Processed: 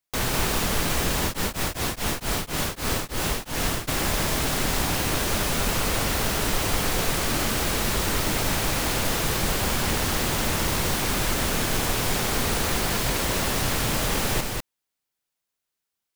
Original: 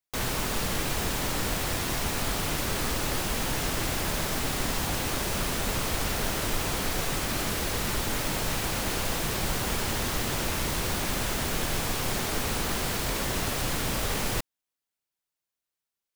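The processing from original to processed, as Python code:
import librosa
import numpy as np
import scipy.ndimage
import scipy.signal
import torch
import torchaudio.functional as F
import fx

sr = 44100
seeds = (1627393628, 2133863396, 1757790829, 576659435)

y = fx.rider(x, sr, range_db=10, speed_s=0.5)
y = y + 10.0 ** (-3.5 / 20.0) * np.pad(y, (int(198 * sr / 1000.0), 0))[:len(y)]
y = fx.tremolo_abs(y, sr, hz=fx.line((1.23, 5.6), (3.87, 2.2)), at=(1.23, 3.87), fade=0.02)
y = F.gain(torch.from_numpy(y), 3.0).numpy()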